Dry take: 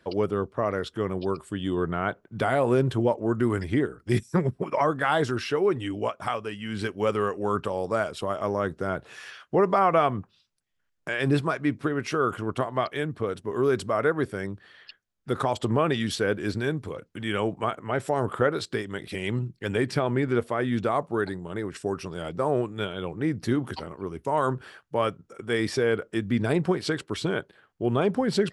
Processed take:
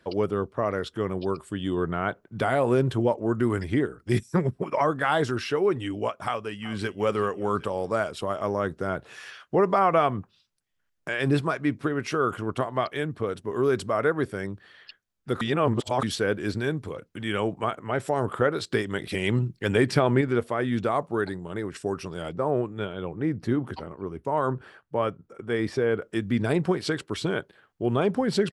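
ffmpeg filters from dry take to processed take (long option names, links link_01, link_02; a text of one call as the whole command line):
ffmpeg -i in.wav -filter_complex "[0:a]asplit=2[link_01][link_02];[link_02]afade=type=in:start_time=6.24:duration=0.01,afade=type=out:start_time=7:duration=0.01,aecho=0:1:380|760|1140|1520:0.149624|0.0748118|0.0374059|0.0187029[link_03];[link_01][link_03]amix=inputs=2:normalize=0,asettb=1/sr,asplit=3[link_04][link_05][link_06];[link_04]atrim=end=22.334[link_07];[link_05]atrim=start=22.33:end=26.02,asetpts=PTS-STARTPTS,afade=type=in:duration=0.004:curve=qsin,afade=type=out:start_time=3.686:duration=0.004:curve=qsin,highshelf=frequency=2800:gain=-11[link_08];[link_06]atrim=start=26.016[link_09];[link_07][link_08]acrossfade=duration=0.004:curve1=hsin:curve2=qsin[link_10];[link_10][link_09]acrossfade=duration=0.004:curve1=qsin:curve2=hsin,asplit=5[link_11][link_12][link_13][link_14][link_15];[link_11]atrim=end=15.412[link_16];[link_12]atrim=start=15.408:end=16.032,asetpts=PTS-STARTPTS,areverse[link_17];[link_13]atrim=start=16.028:end=18.722[link_18];[link_14]atrim=start=18.718:end=20.212,asetpts=PTS-STARTPTS,volume=4dB[link_19];[link_15]atrim=start=20.208[link_20];[link_16][link_17]acrossfade=duration=0.004:curve1=hsin:curve2=hsin[link_21];[link_21][link_18]acrossfade=duration=0.004:curve1=hsin:curve2=hsin[link_22];[link_22][link_19]acrossfade=duration=0.004:curve1=hsin:curve2=hsin[link_23];[link_23][link_20]acrossfade=duration=0.004:curve1=hsin:curve2=hsin" out.wav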